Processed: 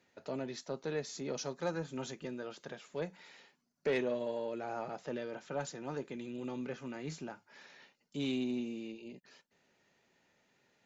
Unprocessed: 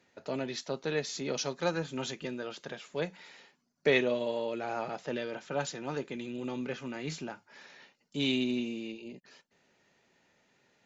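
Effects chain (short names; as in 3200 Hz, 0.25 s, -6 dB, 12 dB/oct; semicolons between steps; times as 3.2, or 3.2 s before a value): dynamic EQ 3100 Hz, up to -7 dB, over -51 dBFS, Q 0.88; soft clip -20.5 dBFS, distortion -19 dB; gain -3.5 dB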